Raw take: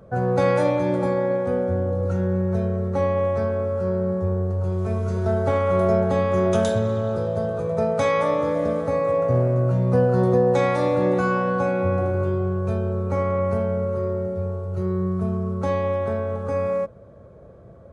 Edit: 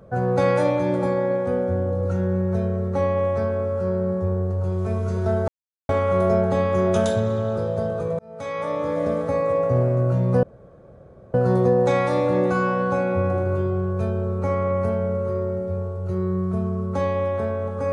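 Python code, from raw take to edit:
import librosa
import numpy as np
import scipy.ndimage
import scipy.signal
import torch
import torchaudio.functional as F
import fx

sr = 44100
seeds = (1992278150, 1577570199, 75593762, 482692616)

y = fx.edit(x, sr, fx.insert_silence(at_s=5.48, length_s=0.41),
    fx.fade_in_span(start_s=7.78, length_s=0.88),
    fx.insert_room_tone(at_s=10.02, length_s=0.91), tone=tone)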